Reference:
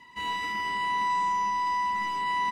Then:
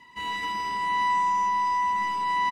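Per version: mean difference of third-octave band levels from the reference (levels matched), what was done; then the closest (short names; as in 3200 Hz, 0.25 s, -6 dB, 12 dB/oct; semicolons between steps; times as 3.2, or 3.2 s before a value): 2.0 dB: echo 0.156 s -6.5 dB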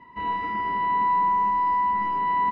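6.5 dB: LPF 1200 Hz 12 dB/oct; gain +7 dB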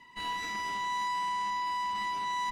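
3.5 dB: tube stage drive 32 dB, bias 0.8; gain +2 dB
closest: first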